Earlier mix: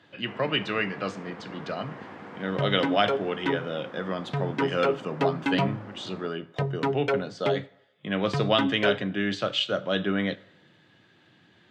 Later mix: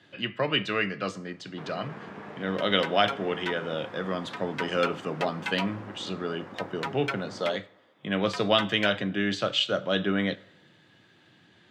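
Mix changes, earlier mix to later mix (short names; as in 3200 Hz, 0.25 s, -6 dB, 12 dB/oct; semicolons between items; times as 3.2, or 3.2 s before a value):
first sound: entry +1.30 s; second sound: add HPF 1100 Hz 12 dB/oct; master: add high shelf 7400 Hz +8 dB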